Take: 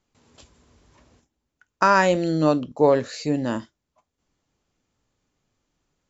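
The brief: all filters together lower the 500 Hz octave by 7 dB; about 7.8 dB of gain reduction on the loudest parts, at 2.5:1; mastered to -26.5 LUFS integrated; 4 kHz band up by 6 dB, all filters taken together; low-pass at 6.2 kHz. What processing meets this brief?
low-pass 6.2 kHz; peaking EQ 500 Hz -8.5 dB; peaking EQ 4 kHz +8.5 dB; compression 2.5:1, threshold -25 dBFS; trim +2 dB

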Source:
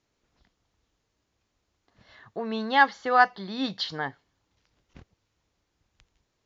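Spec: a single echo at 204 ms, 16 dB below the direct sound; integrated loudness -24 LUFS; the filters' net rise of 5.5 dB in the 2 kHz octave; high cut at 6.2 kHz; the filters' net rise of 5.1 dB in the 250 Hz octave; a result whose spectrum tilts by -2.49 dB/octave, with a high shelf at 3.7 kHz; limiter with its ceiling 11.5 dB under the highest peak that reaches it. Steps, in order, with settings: low-pass 6.2 kHz; peaking EQ 250 Hz +5.5 dB; peaking EQ 2 kHz +9 dB; treble shelf 3.7 kHz -8.5 dB; peak limiter -13.5 dBFS; delay 204 ms -16 dB; trim +3.5 dB

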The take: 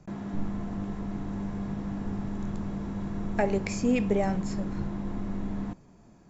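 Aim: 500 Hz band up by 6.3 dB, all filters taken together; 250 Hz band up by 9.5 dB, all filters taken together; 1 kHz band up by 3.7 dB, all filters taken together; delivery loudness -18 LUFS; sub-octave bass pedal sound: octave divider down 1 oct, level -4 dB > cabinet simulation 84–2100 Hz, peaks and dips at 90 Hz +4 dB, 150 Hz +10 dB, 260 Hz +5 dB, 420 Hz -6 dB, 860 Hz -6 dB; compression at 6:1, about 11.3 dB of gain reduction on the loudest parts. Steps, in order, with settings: peaking EQ 250 Hz +6 dB; peaking EQ 500 Hz +8 dB; peaking EQ 1 kHz +6 dB; compression 6:1, threshold -25 dBFS; octave divider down 1 oct, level -4 dB; cabinet simulation 84–2100 Hz, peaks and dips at 90 Hz +4 dB, 150 Hz +10 dB, 260 Hz +5 dB, 420 Hz -6 dB, 860 Hz -6 dB; trim +9 dB

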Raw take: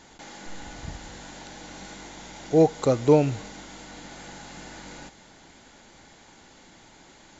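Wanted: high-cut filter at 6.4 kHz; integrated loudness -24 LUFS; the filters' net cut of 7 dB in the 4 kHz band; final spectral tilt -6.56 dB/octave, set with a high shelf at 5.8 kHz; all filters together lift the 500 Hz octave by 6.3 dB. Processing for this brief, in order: low-pass 6.4 kHz; peaking EQ 500 Hz +7 dB; peaking EQ 4 kHz -6 dB; treble shelf 5.8 kHz -6 dB; trim -7.5 dB

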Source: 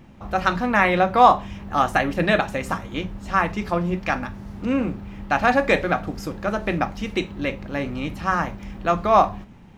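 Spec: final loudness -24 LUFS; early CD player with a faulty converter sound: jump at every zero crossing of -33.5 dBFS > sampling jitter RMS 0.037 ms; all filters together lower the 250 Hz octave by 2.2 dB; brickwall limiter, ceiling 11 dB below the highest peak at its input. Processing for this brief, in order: peaking EQ 250 Hz -3 dB; peak limiter -12 dBFS; jump at every zero crossing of -33.5 dBFS; sampling jitter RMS 0.037 ms; trim +0.5 dB

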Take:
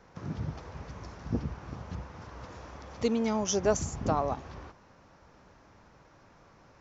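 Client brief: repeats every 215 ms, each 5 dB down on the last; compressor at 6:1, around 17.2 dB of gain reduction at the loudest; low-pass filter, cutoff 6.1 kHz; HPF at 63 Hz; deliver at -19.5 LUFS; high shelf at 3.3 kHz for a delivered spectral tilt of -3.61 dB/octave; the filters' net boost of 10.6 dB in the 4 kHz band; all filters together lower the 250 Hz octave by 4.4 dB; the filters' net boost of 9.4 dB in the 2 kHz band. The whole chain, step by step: high-pass 63 Hz; low-pass 6.1 kHz; peaking EQ 250 Hz -5.5 dB; peaking EQ 2 kHz +8.5 dB; treble shelf 3.3 kHz +6.5 dB; peaking EQ 4 kHz +8 dB; compression 6:1, threshold -40 dBFS; feedback delay 215 ms, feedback 56%, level -5 dB; trim +24 dB

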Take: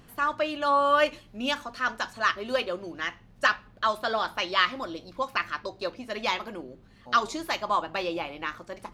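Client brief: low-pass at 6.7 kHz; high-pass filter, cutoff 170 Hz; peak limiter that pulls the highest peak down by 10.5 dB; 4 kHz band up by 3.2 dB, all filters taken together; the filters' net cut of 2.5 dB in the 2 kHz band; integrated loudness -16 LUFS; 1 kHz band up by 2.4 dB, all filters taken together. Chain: high-pass 170 Hz; low-pass 6.7 kHz; peaking EQ 1 kHz +4.5 dB; peaking EQ 2 kHz -7 dB; peaking EQ 4 kHz +7.5 dB; trim +15 dB; peak limiter -3 dBFS

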